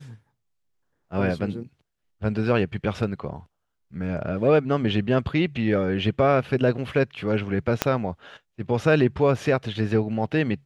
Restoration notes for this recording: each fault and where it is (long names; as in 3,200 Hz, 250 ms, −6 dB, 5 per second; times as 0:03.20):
0:07.82: click −4 dBFS